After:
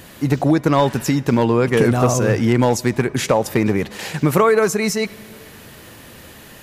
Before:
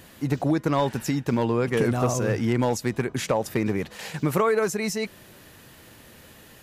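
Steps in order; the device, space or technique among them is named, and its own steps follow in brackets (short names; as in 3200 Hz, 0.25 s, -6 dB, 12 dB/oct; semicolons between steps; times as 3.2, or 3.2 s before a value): compressed reverb return (on a send at -5.5 dB: reverb RT60 1.3 s, pre-delay 56 ms + compressor 4:1, threshold -42 dBFS, peak gain reduction 19 dB); on the sum: gain +7.5 dB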